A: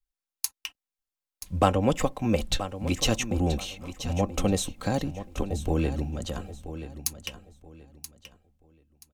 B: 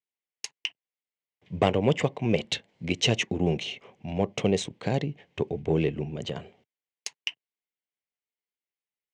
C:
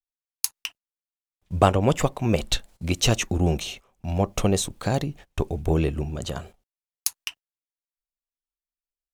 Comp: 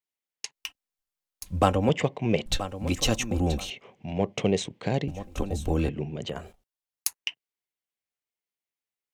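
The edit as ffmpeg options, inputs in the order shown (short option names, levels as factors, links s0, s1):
-filter_complex "[0:a]asplit=3[s0][s1][s2];[1:a]asplit=5[s3][s4][s5][s6][s7];[s3]atrim=end=0.552[s8];[s0]atrim=start=0.548:end=1.892[s9];[s4]atrim=start=1.888:end=2.462[s10];[s1]atrim=start=2.458:end=3.702[s11];[s5]atrim=start=3.698:end=5.082[s12];[s2]atrim=start=5.078:end=5.892[s13];[s6]atrim=start=5.888:end=6.51[s14];[2:a]atrim=start=6.27:end=7.25[s15];[s7]atrim=start=7.01[s16];[s8][s9]acrossfade=d=0.004:c1=hsin:c2=hsin[s17];[s17][s10]acrossfade=d=0.004:c1=hsin:c2=hsin[s18];[s18][s11]acrossfade=d=0.004:c1=hsin:c2=hsin[s19];[s19][s12]acrossfade=d=0.004:c1=hsin:c2=hsin[s20];[s20][s13]acrossfade=d=0.004:c1=hsin:c2=hsin[s21];[s21][s14]acrossfade=d=0.004:c1=hsin:c2=hsin[s22];[s22][s15]acrossfade=d=0.24:c1=tri:c2=tri[s23];[s23][s16]acrossfade=d=0.24:c1=tri:c2=tri"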